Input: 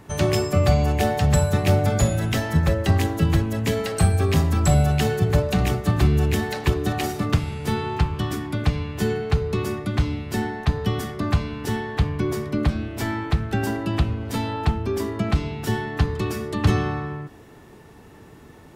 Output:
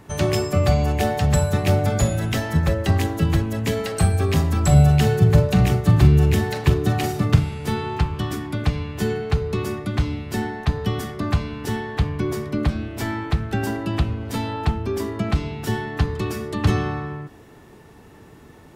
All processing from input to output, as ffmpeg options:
-filter_complex "[0:a]asettb=1/sr,asplit=3[a][b][c];[a]atrim=end=4.724[d];[b]atrim=start=4.72:end=7.48,asetpts=PTS-STARTPTS,afade=t=in:d=0.004:c=qsin,afade=t=out:st=2.756:d=0.004:c=qsin,equalizer=f=130:t=o:w=1.1:g=7,asplit=2[e][f];[f]adelay=43,volume=-12dB[g];[e][g]amix=inputs=2:normalize=0,atrim=end_sample=121716[h];[c]atrim=start=7.476[i];[d][h]acrossfade=d=0.004:c1=hsin:c2=qsin[j];[j][i]acrossfade=d=0.004:c1=qsin:c2=hsin"

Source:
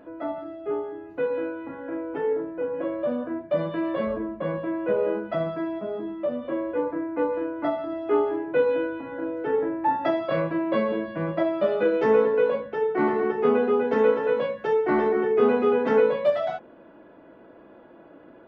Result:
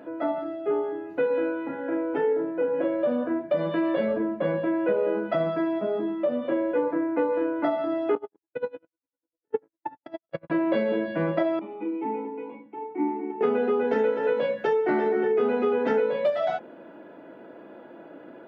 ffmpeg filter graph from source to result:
-filter_complex "[0:a]asettb=1/sr,asplit=3[a][b][c];[a]atrim=end=8.154[d];[b]atrim=start=8.15:end=10.5,asetpts=PTS-STARTPTS,afade=t=in:d=0.004:c=qsin,afade=t=out:st=2.346:d=0.004:c=qsin,agate=range=-59dB:threshold=-22dB:ratio=16:release=100:detection=peak,equalizer=f=67:w=0.65:g=13.5,aeval=exprs='val(0)*pow(10,-35*(0.5-0.5*cos(2*PI*10*n/s))/20)':c=same[e];[c]atrim=start=10.496[f];[d][e]acrossfade=d=0.004:c1=hsin:c2=qsin[g];[g][f]acrossfade=d=0.004:c1=qsin:c2=hsin,asettb=1/sr,asplit=3[h][i][j];[h]atrim=end=11.594[k];[i]atrim=start=11.59:end=13.41,asetpts=PTS-STARTPTS,afade=t=in:d=0.004:c=qsin,afade=t=out:st=1.816:d=0.004:c=qsin,asplit=3[l][m][n];[l]bandpass=f=300:t=q:w=8,volume=0dB[o];[m]bandpass=f=870:t=q:w=8,volume=-6dB[p];[n]bandpass=f=2.24k:t=q:w=8,volume=-9dB[q];[o][p][q]amix=inputs=3:normalize=0,bass=f=250:g=2,treble=f=4k:g=-13[r];[j]atrim=start=13.406[s];[k][r]acrossfade=d=0.004:c1=hsin:c2=qsin[t];[t][s]acrossfade=d=0.004:c1=qsin:c2=hsin,highpass=160,bandreject=f=1.1k:w=9.6,acompressor=threshold=-25dB:ratio=6,volume=4.5dB"

